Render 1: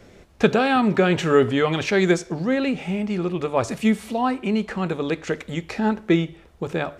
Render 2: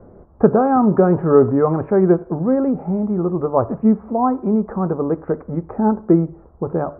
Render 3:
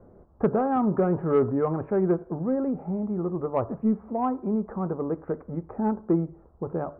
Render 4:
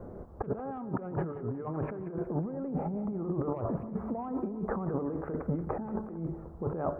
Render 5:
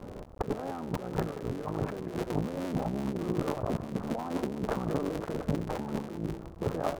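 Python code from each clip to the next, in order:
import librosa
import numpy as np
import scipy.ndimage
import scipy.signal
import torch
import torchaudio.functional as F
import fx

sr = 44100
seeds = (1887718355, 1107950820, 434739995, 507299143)

y1 = scipy.signal.sosfilt(scipy.signal.butter(6, 1200.0, 'lowpass', fs=sr, output='sos'), x)
y1 = F.gain(torch.from_numpy(y1), 5.0).numpy()
y2 = 10.0 ** (-3.5 / 20.0) * np.tanh(y1 / 10.0 ** (-3.5 / 20.0))
y2 = F.gain(torch.from_numpy(y2), -8.5).numpy()
y3 = fx.over_compress(y2, sr, threshold_db=-35.0, ratio=-1.0)
y3 = fx.echo_feedback(y3, sr, ms=181, feedback_pct=47, wet_db=-13.5)
y4 = fx.cycle_switch(y3, sr, every=3, mode='muted')
y4 = fx.doppler_dist(y4, sr, depth_ms=0.26)
y4 = F.gain(torch.from_numpy(y4), 3.0).numpy()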